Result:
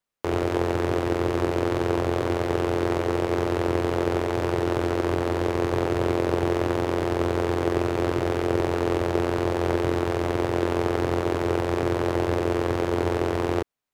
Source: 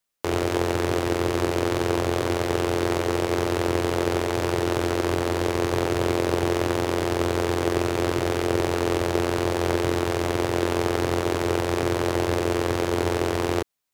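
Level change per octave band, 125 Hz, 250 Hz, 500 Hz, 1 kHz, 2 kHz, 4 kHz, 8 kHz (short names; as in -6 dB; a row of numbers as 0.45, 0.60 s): 0.0, 0.0, 0.0, -1.0, -2.5, -5.5, -8.5 dB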